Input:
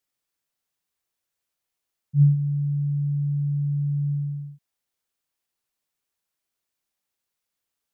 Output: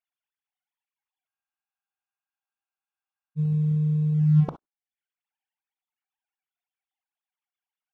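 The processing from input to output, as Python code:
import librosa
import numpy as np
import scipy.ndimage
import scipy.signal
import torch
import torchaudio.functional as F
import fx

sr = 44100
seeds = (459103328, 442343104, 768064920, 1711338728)

y = fx.sine_speech(x, sr)
y = fx.leveller(y, sr, passes=1)
y = fx.over_compress(y, sr, threshold_db=-27.0, ratio=-1.0)
y = fx.dereverb_blind(y, sr, rt60_s=0.58)
y = fx.rev_gated(y, sr, seeds[0], gate_ms=80, shape='rising', drr_db=11.0)
y = fx.spec_freeze(y, sr, seeds[1], at_s=1.3, hold_s=2.09)
y = F.gain(torch.from_numpy(y), 8.5).numpy()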